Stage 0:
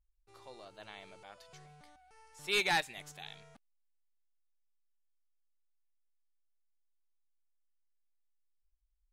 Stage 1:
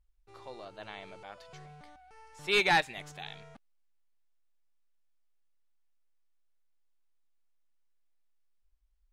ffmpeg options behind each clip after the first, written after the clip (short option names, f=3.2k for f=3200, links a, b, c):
-af "lowpass=f=3.1k:p=1,volume=6.5dB"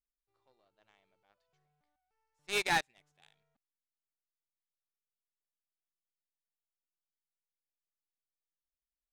-af "aeval=exprs='0.126*(cos(1*acos(clip(val(0)/0.126,-1,1)))-cos(1*PI/2))+0.0398*(cos(3*acos(clip(val(0)/0.126,-1,1)))-cos(3*PI/2))':c=same,volume=-3dB"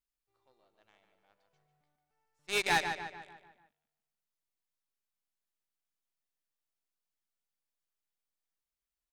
-filter_complex "[0:a]asplit=2[a][b];[b]adelay=147,lowpass=f=3.7k:p=1,volume=-7dB,asplit=2[c][d];[d]adelay=147,lowpass=f=3.7k:p=1,volume=0.5,asplit=2[e][f];[f]adelay=147,lowpass=f=3.7k:p=1,volume=0.5,asplit=2[g][h];[h]adelay=147,lowpass=f=3.7k:p=1,volume=0.5,asplit=2[i][j];[j]adelay=147,lowpass=f=3.7k:p=1,volume=0.5,asplit=2[k][l];[l]adelay=147,lowpass=f=3.7k:p=1,volume=0.5[m];[a][c][e][g][i][k][m]amix=inputs=7:normalize=0,volume=1dB"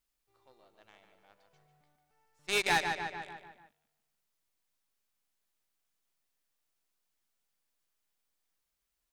-af "acompressor=threshold=-44dB:ratio=1.5,volume=7.5dB"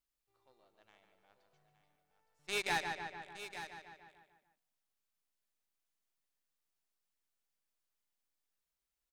-af "aecho=1:1:866:0.266,volume=-6.5dB"